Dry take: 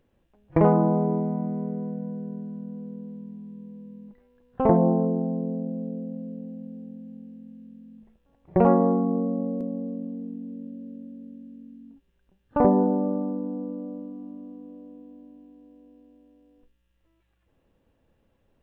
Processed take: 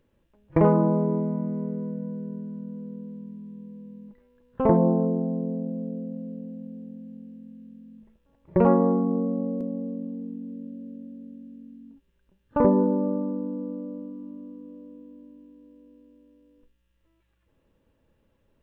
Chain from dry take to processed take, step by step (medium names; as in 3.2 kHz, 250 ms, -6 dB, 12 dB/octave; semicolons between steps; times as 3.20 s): Butterworth band-stop 740 Hz, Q 6.5